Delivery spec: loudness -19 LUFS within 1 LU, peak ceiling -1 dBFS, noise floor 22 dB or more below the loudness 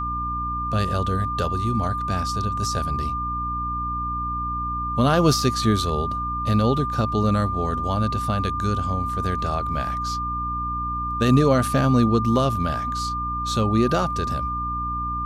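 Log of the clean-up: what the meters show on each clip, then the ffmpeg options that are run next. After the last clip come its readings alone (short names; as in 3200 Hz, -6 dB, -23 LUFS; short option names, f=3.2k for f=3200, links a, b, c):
hum 60 Hz; harmonics up to 300 Hz; hum level -29 dBFS; steady tone 1200 Hz; tone level -25 dBFS; loudness -23.0 LUFS; peak -6.0 dBFS; loudness target -19.0 LUFS
-> -af "bandreject=f=60:t=h:w=4,bandreject=f=120:t=h:w=4,bandreject=f=180:t=h:w=4,bandreject=f=240:t=h:w=4,bandreject=f=300:t=h:w=4"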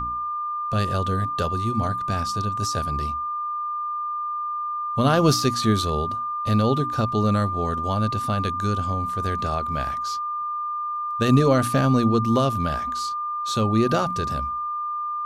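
hum none; steady tone 1200 Hz; tone level -25 dBFS
-> -af "bandreject=f=1.2k:w=30"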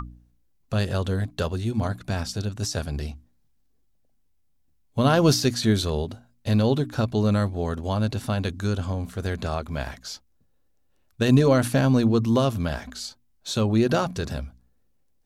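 steady tone none; loudness -24.5 LUFS; peak -7.0 dBFS; loudness target -19.0 LUFS
-> -af "volume=5.5dB"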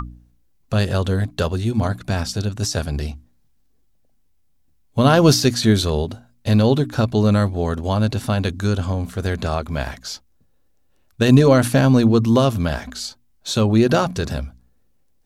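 loudness -19.0 LUFS; peak -1.5 dBFS; noise floor -59 dBFS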